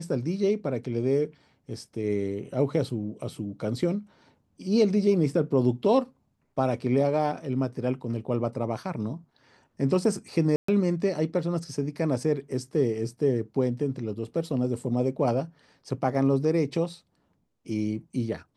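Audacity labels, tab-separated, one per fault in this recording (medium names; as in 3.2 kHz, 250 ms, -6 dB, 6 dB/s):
10.560000	10.680000	dropout 124 ms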